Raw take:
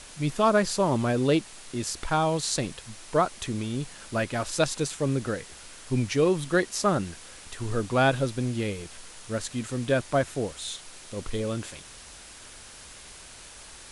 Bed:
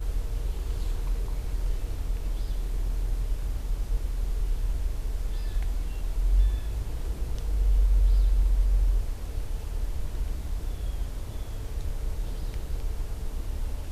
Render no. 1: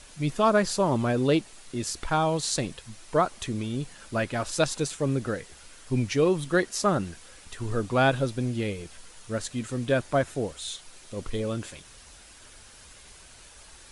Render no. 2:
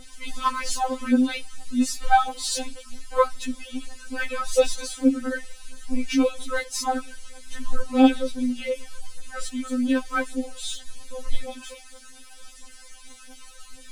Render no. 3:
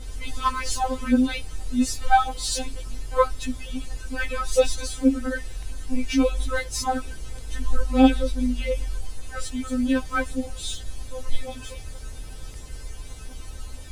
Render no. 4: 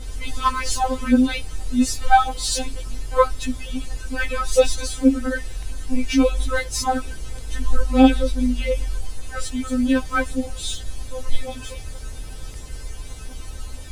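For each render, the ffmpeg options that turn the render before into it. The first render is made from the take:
-af "afftdn=nr=6:nf=-47"
-af "aphaser=in_gain=1:out_gain=1:delay=4.7:decay=0.79:speed=0.87:type=triangular,afftfilt=real='re*3.46*eq(mod(b,12),0)':imag='im*3.46*eq(mod(b,12),0)':win_size=2048:overlap=0.75"
-filter_complex "[1:a]volume=-6dB[a];[0:a][a]amix=inputs=2:normalize=0"
-af "volume=3.5dB,alimiter=limit=-3dB:level=0:latency=1"

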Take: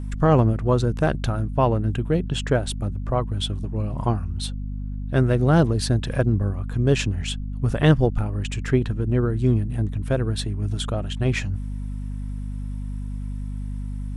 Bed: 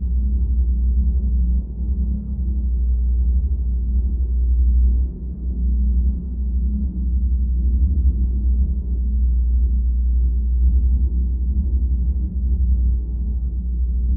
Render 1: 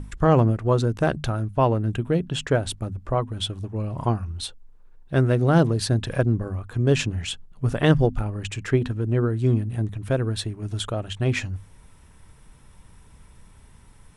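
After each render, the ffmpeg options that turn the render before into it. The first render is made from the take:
-af "bandreject=f=50:t=h:w=6,bandreject=f=100:t=h:w=6,bandreject=f=150:t=h:w=6,bandreject=f=200:t=h:w=6,bandreject=f=250:t=h:w=6"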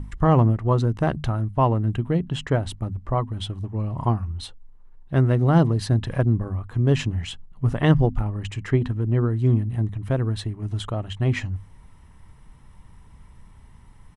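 -af "highshelf=f=3.7k:g=-9.5,aecho=1:1:1:0.33"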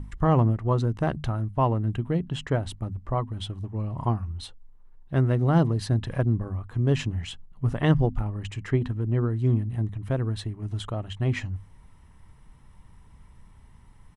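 -af "volume=-3.5dB"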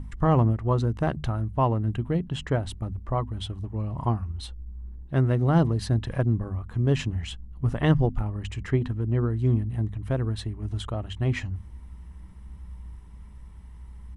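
-filter_complex "[1:a]volume=-23.5dB[a];[0:a][a]amix=inputs=2:normalize=0"

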